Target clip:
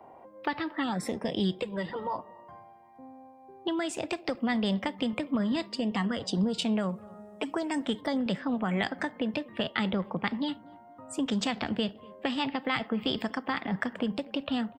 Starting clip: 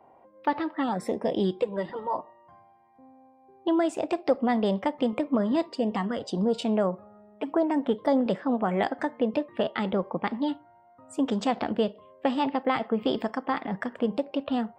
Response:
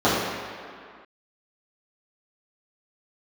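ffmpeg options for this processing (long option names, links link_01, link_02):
-filter_complex "[0:a]asettb=1/sr,asplit=3[link_01][link_02][link_03];[link_01]atrim=end=6.894[link_04];[link_02]atrim=start=6.89:end=8.01,asetpts=PTS-STARTPTS,afade=type=in:duration=0.004:curve=qsin,afade=type=out:start_time=1.116:duration=0.004:curve=qsin,equalizer=frequency=8300:width_type=o:width=1.5:gain=13.5[link_05];[link_03]atrim=start=8.006[link_06];[link_04][link_05]acrossfade=duration=0.004:curve1=hsin:curve2=qsin[link_07];[link_07][link_06]acrossfade=duration=0.004:curve1=qsin:curve2=hsin,acrossover=split=180|1600[link_08][link_09][link_10];[link_09]acompressor=threshold=-38dB:ratio=6[link_11];[link_08][link_11][link_10]amix=inputs=3:normalize=0,asplit=2[link_12][link_13];[link_13]adelay=243,lowpass=frequency=1100:poles=1,volume=-22dB,asplit=2[link_14][link_15];[link_15]adelay=243,lowpass=frequency=1100:poles=1,volume=0.39,asplit=2[link_16][link_17];[link_17]adelay=243,lowpass=frequency=1100:poles=1,volume=0.39[link_18];[link_12][link_14][link_16][link_18]amix=inputs=4:normalize=0,volume=5dB"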